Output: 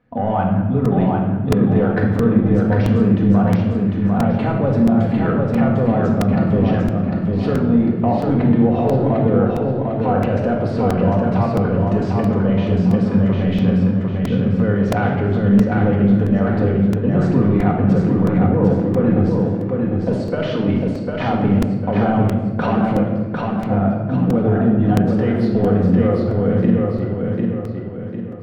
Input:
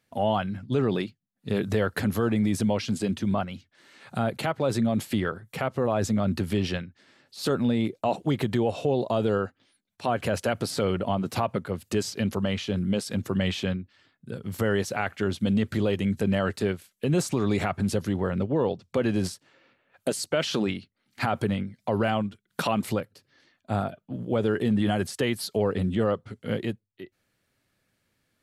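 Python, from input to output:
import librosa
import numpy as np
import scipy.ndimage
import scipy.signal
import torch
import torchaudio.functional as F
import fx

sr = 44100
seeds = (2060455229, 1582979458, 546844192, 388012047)

p1 = scipy.signal.sosfilt(scipy.signal.butter(2, 1300.0, 'lowpass', fs=sr, output='sos'), x)
p2 = fx.low_shelf(p1, sr, hz=190.0, db=4.5)
p3 = fx.over_compress(p2, sr, threshold_db=-31.0, ratio=-1.0)
p4 = p2 + (p3 * librosa.db_to_amplitude(1.0))
p5 = 10.0 ** (-10.0 / 20.0) * np.tanh(p4 / 10.0 ** (-10.0 / 20.0))
p6 = p5 + fx.echo_feedback(p5, sr, ms=750, feedback_pct=42, wet_db=-3.5, dry=0)
p7 = fx.room_shoebox(p6, sr, seeds[0], volume_m3=1200.0, walls='mixed', distance_m=1.9)
y = fx.buffer_crackle(p7, sr, first_s=0.85, period_s=0.67, block=128, kind='repeat')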